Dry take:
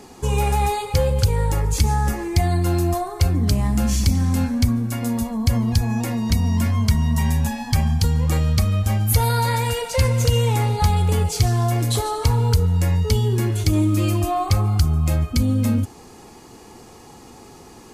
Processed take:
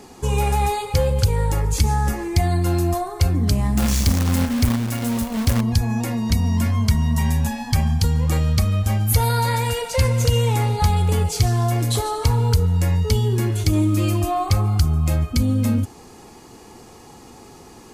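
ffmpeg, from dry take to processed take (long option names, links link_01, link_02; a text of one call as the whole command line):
ffmpeg -i in.wav -filter_complex "[0:a]asettb=1/sr,asplit=3[link_01][link_02][link_03];[link_01]atrim=end=3.774[link_04];[link_02]atrim=start=3.77:end=5.61,asetpts=PTS-STARTPTS,afade=type=in:duration=0.004:curve=qsin,afade=type=out:start_time=1.836:duration=0.004:curve=qsin,acrusher=bits=2:mode=log:mix=0:aa=0.000001[link_05];[link_03]atrim=start=5.606[link_06];[link_04][link_05]acrossfade=duration=0.004:curve1=hsin:curve2=qsin[link_07];[link_07][link_06]acrossfade=duration=0.004:curve1=qsin:curve2=hsin" out.wav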